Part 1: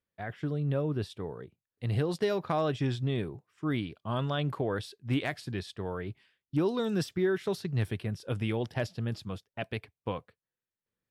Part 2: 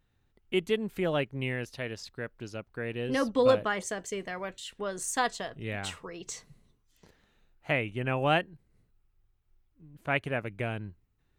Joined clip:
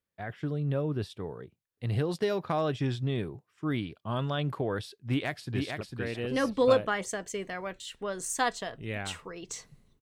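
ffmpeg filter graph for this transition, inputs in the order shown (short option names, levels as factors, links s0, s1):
-filter_complex "[0:a]apad=whole_dur=10.01,atrim=end=10.01,atrim=end=5.812[s0];[1:a]atrim=start=2.588:end=6.79[s1];[s0][s1]acrossfade=d=0.004:c1=hsin:c2=hsin,asplit=2[s2][s3];[s3]afade=t=in:st=5.02:d=0.01,afade=t=out:st=5.81:d=0.01,aecho=0:1:450|900|1350:0.630957|0.126191|0.0252383[s4];[s2][s4]amix=inputs=2:normalize=0"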